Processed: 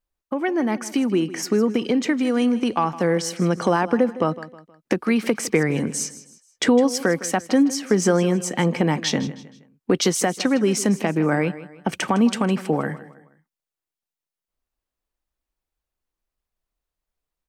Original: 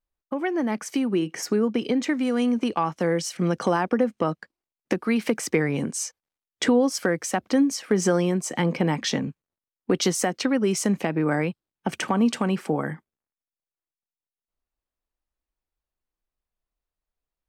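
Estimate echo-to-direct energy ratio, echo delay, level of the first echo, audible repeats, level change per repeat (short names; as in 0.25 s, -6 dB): -15.5 dB, 0.158 s, -16.0 dB, 3, -8.0 dB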